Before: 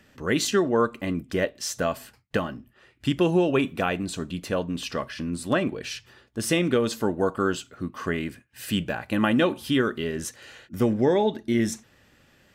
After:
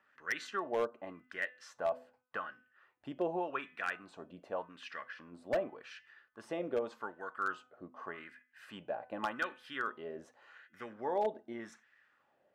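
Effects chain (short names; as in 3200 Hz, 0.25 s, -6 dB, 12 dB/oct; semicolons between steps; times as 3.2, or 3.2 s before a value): de-hum 251.5 Hz, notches 13; wah 0.86 Hz 620–1800 Hz, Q 3; wavefolder -21.5 dBFS; gain -3 dB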